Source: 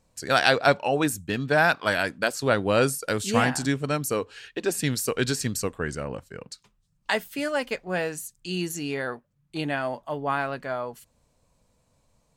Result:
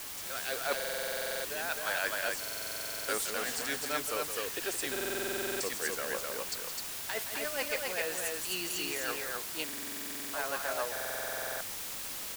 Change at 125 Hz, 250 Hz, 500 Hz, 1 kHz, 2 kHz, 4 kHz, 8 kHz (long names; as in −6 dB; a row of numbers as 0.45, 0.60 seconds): −23.5, −16.0, −10.5, −11.0, −8.0, −4.0, −1.0 decibels